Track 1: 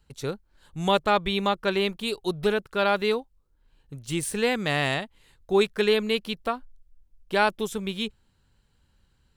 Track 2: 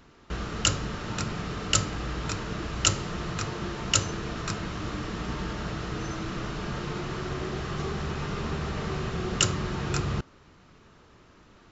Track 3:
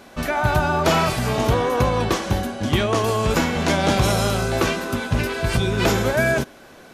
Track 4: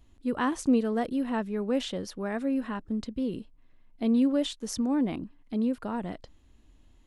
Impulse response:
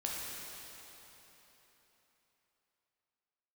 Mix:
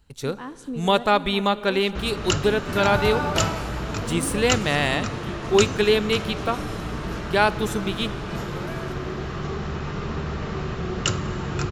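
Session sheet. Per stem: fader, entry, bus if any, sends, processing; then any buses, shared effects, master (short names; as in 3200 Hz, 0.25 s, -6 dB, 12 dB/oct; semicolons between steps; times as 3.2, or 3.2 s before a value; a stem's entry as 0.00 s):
+2.0 dB, 0.00 s, send -17.5 dB, dry
+1.5 dB, 1.65 s, send -16.5 dB, high shelf 4100 Hz -7.5 dB
3.34 s -8.5 dB -> 3.73 s -21.5 dB, 2.50 s, send -7.5 dB, dry
-10.0 dB, 0.00 s, send -16.5 dB, dry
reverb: on, RT60 3.8 s, pre-delay 8 ms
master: dry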